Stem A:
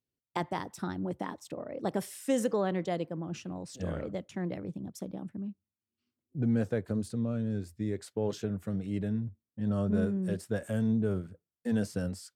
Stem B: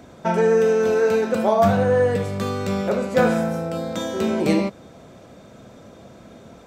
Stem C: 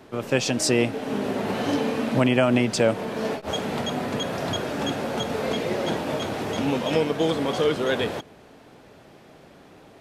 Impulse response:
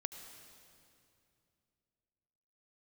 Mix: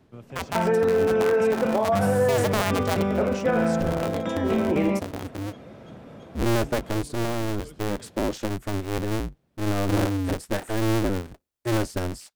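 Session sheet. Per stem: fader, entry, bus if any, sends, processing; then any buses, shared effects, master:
-3.5 dB, 0.00 s, no send, cycle switcher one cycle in 2, inverted; AGC gain up to 9 dB
-1.0 dB, 0.30 s, no send, polynomial smoothing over 25 samples
-14.0 dB, 0.00 s, no send, tone controls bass +12 dB, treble +1 dB; auto duck -12 dB, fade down 0.45 s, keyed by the first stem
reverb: off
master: limiter -13.5 dBFS, peak gain reduction 8 dB

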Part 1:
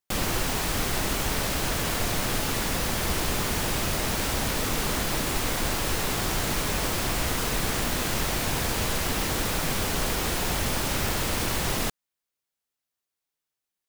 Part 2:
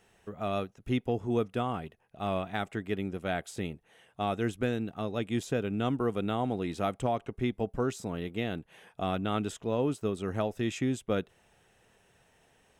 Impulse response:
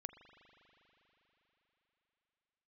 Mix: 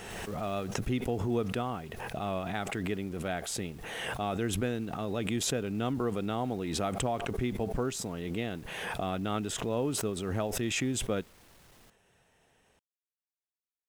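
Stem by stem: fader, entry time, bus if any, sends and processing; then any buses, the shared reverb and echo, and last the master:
-17.5 dB, 0.00 s, no send, soft clip -27.5 dBFS, distortion -10 dB; auto duck -10 dB, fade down 0.95 s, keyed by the second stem
-2.5 dB, 0.00 s, no send, backwards sustainer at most 27 dB/s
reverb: off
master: dry

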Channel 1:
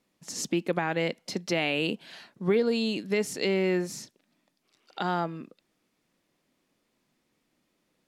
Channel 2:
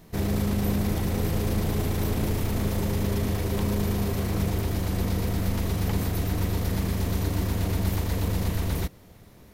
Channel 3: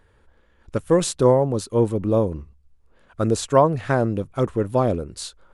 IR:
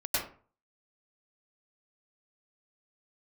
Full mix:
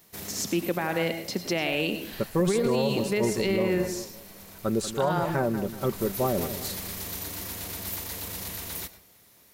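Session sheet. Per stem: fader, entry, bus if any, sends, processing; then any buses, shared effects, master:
+1.0 dB, 0.00 s, send -14.5 dB, no echo send, dry
-7.0 dB, 0.00 s, send -20.5 dB, no echo send, tilt +3.5 dB/oct; auto duck -16 dB, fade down 1.20 s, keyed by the first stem
-6.0 dB, 1.45 s, no send, echo send -12.5 dB, comb 5.2 ms, depth 54%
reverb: on, RT60 0.40 s, pre-delay 92 ms
echo: feedback echo 0.187 s, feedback 38%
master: limiter -16 dBFS, peak gain reduction 10 dB

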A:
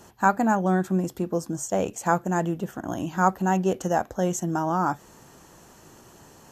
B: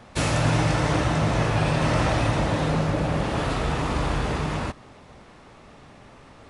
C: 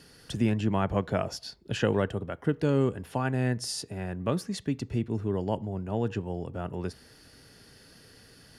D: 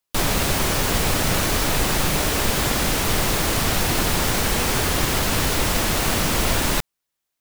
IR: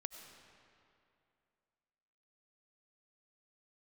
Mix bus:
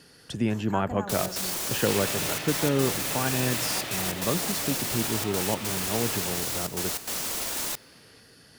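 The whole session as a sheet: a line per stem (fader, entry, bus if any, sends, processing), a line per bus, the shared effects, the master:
-10.5 dB, 0.50 s, no send, fast leveller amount 50%; auto duck -12 dB, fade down 1.85 s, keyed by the third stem
-14.0 dB, 1.70 s, no send, weighting filter D
-0.5 dB, 0.00 s, send -10.5 dB, dry
-8.5 dB, 0.95 s, send -19.5 dB, tone controls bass -7 dB, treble +9 dB; limiter -13 dBFS, peak gain reduction 8 dB; step gate ".xx.xxxxxxxxxx" 147 bpm -12 dB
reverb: on, RT60 2.6 s, pre-delay 55 ms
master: low shelf 73 Hz -11 dB

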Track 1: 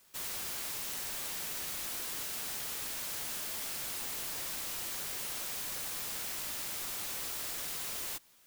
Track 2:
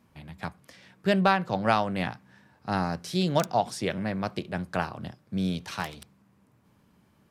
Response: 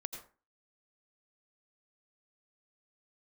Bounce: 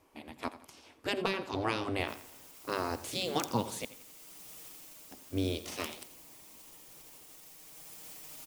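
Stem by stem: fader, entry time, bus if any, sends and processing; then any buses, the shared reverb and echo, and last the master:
-11.5 dB, 1.85 s, no send, echo send -4.5 dB, comb 6.4 ms, depth 92%; limiter -28.5 dBFS, peak gain reduction 5.5 dB; auto duck -16 dB, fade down 0.45 s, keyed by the second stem
+2.0 dB, 0.00 s, muted 3.85–5.11, send -14 dB, echo send -14.5 dB, spectral gate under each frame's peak -10 dB weak; compressor 4:1, threshold -29 dBFS, peak gain reduction 5 dB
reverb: on, RT60 0.35 s, pre-delay 78 ms
echo: feedback echo 85 ms, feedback 41%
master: fifteen-band EQ 250 Hz +5 dB, 1600 Hz -7 dB, 4000 Hz -4 dB

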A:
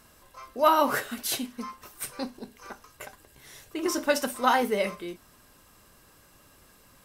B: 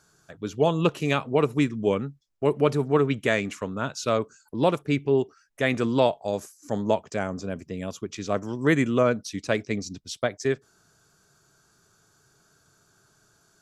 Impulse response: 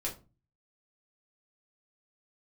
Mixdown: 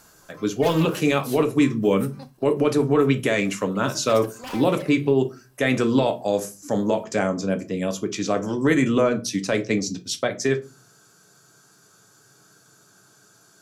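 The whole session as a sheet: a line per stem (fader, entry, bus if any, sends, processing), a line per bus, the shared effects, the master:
-1.5 dB, 0.00 s, no send, bell 730 Hz +5.5 dB 0.81 oct; wavefolder -19 dBFS; auto duck -10 dB, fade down 0.85 s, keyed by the second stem
+2.5 dB, 0.00 s, send -4 dB, HPF 120 Hz 24 dB/oct; limiter -17 dBFS, peak gain reduction 9.5 dB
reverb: on, RT60 0.30 s, pre-delay 4 ms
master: high shelf 9400 Hz +7 dB

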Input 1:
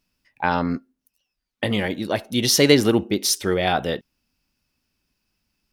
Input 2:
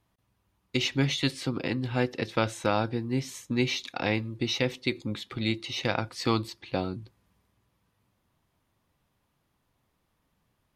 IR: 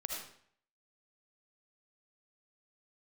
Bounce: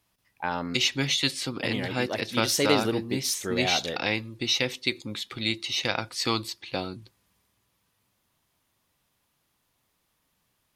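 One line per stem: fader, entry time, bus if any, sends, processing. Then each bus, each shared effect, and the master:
-8.0 dB, 0.00 s, no send, dry
-1.5 dB, 0.00 s, no send, high shelf 2400 Hz +10.5 dB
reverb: off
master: low shelf 200 Hz -4.5 dB

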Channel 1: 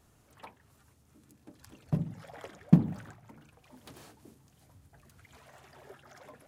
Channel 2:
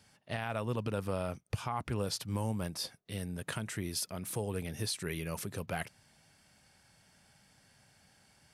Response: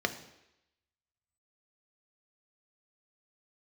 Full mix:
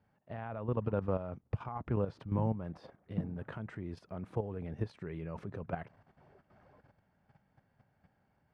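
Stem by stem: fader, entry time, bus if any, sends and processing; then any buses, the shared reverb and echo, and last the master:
-0.5 dB, 0.45 s, no send, auto duck -9 dB, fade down 1.85 s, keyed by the second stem
+1.0 dB, 0.00 s, no send, AGC gain up to 3 dB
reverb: off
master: level quantiser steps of 10 dB; LPF 1200 Hz 12 dB/oct

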